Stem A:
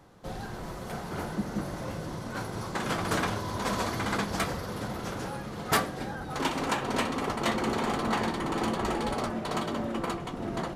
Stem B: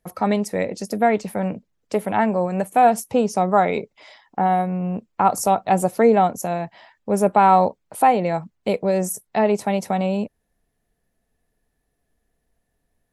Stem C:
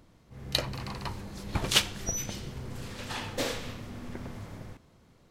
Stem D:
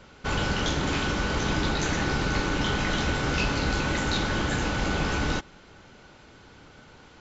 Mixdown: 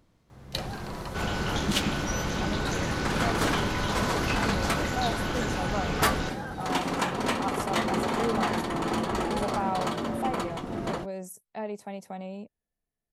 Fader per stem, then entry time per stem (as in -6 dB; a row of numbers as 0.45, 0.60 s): +1.0, -16.5, -5.5, -4.5 dB; 0.30, 2.20, 0.00, 0.90 s